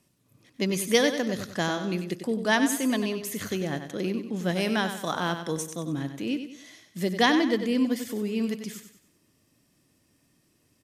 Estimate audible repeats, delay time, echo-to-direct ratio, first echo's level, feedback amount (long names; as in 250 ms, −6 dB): 4, 95 ms, −8.0 dB, −9.0 dB, 40%